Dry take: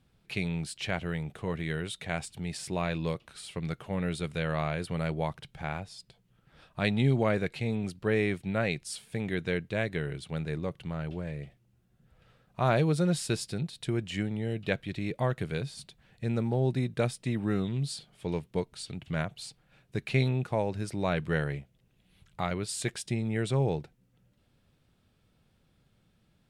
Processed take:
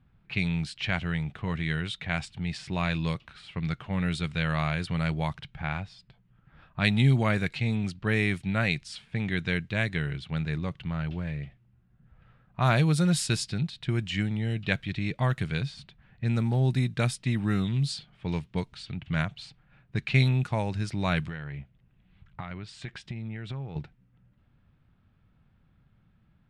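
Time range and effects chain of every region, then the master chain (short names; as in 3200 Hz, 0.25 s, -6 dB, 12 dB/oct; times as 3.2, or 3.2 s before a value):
21.26–23.76 compressor 10:1, threshold -35 dBFS + LPF 9500 Hz
whole clip: low-pass opened by the level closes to 1600 Hz, open at -24 dBFS; bell 470 Hz -11.5 dB 1.6 oct; gain +6.5 dB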